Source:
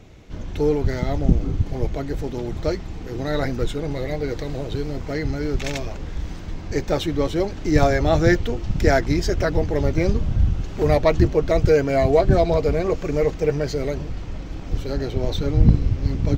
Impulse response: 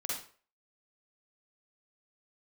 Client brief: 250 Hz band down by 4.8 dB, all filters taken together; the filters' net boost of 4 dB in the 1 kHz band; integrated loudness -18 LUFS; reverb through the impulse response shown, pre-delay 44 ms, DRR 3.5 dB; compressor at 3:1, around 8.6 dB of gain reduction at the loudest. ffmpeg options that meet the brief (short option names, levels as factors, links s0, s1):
-filter_complex "[0:a]equalizer=f=250:t=o:g=-8,equalizer=f=1000:t=o:g=7,acompressor=threshold=0.0708:ratio=3,asplit=2[s0][s1];[1:a]atrim=start_sample=2205,adelay=44[s2];[s1][s2]afir=irnorm=-1:irlink=0,volume=0.501[s3];[s0][s3]amix=inputs=2:normalize=0,volume=2.82"